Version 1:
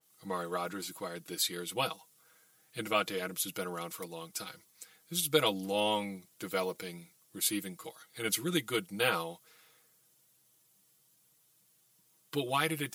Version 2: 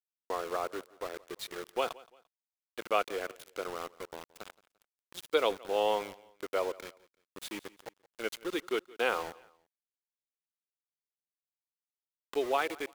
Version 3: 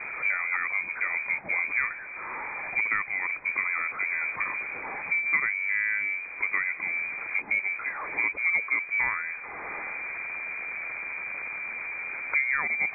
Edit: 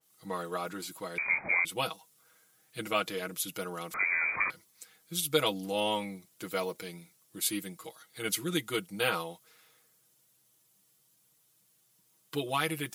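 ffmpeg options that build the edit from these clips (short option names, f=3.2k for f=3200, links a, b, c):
-filter_complex "[2:a]asplit=2[a][b];[0:a]asplit=3[c][d][e];[c]atrim=end=1.182[f];[a]atrim=start=1.178:end=1.652[g];[d]atrim=start=1.648:end=3.942[h];[b]atrim=start=3.938:end=4.502[i];[e]atrim=start=4.498[j];[f][g]acrossfade=d=0.004:c1=hsin:c2=hsin[k];[k][h]acrossfade=d=0.004:c1=hsin:c2=hsin[l];[l][i]acrossfade=d=0.004:c1=hsin:c2=hsin[m];[m][j]acrossfade=d=0.004:c1=hsin:c2=hsin"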